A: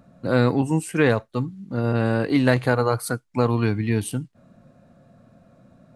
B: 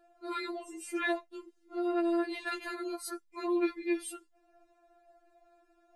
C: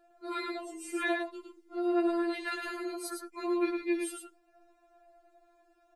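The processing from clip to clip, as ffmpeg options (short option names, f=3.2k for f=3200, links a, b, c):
-af "afftfilt=real='re*4*eq(mod(b,16),0)':imag='im*4*eq(mod(b,16),0)':win_size=2048:overlap=0.75,volume=-6.5dB"
-af "aecho=1:1:108:0.562"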